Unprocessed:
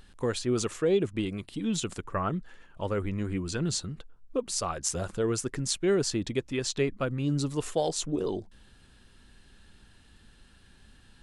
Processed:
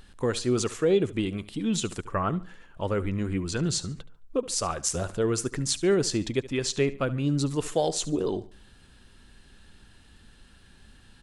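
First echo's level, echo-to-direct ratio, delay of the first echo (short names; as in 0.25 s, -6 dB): -17.5 dB, -17.0 dB, 72 ms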